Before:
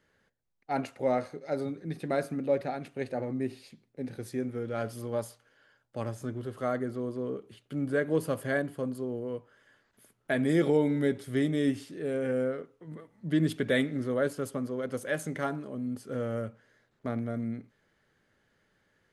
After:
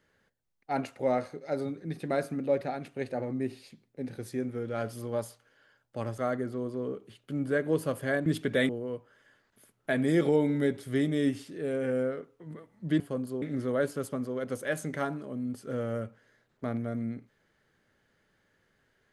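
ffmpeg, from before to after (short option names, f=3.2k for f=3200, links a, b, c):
-filter_complex "[0:a]asplit=6[a][b][c][d][e][f];[a]atrim=end=6.182[g];[b]atrim=start=6.598:end=8.682[h];[c]atrim=start=13.408:end=13.842[i];[d]atrim=start=9.098:end=13.412[j];[e]atrim=start=8.678:end=9.102[k];[f]atrim=start=13.838[l];[g][h]acrossfade=d=0.004:c1=hsin:c2=hsin[m];[m][i]acrossfade=d=0.004:c1=hsin:c2=hsin[n];[n][j]acrossfade=d=0.004:c1=hsin:c2=hsin[o];[o][k]acrossfade=d=0.004:c1=hsin:c2=hsin[p];[p][l]acrossfade=d=0.004:c1=hsin:c2=hsin"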